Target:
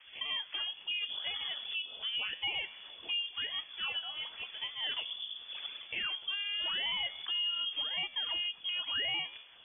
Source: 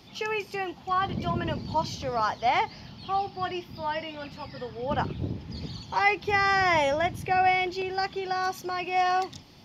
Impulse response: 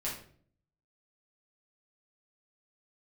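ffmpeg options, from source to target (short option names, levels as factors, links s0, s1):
-filter_complex "[0:a]adynamicequalizer=threshold=0.0112:dfrequency=680:dqfactor=3.3:tfrequency=680:tqfactor=3.3:attack=5:release=100:ratio=0.375:range=3:mode=boostabove:tftype=bell,acrossover=split=830[s0][s1];[s1]acompressor=threshold=0.01:ratio=5[s2];[s0][s2]amix=inputs=2:normalize=0,acrusher=samples=12:mix=1:aa=0.000001:lfo=1:lforange=19.2:lforate=0.9,flanger=delay=8.7:depth=6.2:regen=87:speed=0.47:shape=triangular,alimiter=level_in=2:limit=0.0631:level=0:latency=1:release=149,volume=0.501,highpass=170,lowpass=f=3100:t=q:w=0.5098,lowpass=f=3100:t=q:w=0.6013,lowpass=f=3100:t=q:w=0.9,lowpass=f=3100:t=q:w=2.563,afreqshift=-3600,volume=1.26"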